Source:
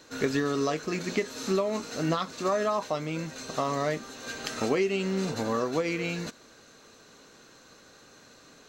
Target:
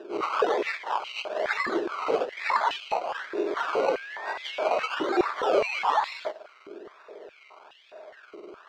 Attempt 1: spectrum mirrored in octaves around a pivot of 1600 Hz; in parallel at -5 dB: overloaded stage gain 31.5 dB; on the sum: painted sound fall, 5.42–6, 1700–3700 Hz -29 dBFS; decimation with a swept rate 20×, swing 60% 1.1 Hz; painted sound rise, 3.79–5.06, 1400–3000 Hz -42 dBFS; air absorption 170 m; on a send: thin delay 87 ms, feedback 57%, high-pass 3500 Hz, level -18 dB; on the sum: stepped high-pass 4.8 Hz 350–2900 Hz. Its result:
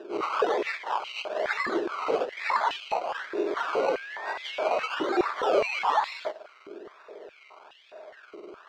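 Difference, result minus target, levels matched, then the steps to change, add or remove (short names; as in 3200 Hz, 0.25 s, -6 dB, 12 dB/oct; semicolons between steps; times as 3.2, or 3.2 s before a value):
overloaded stage: distortion +22 dB
change: overloaded stage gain 22 dB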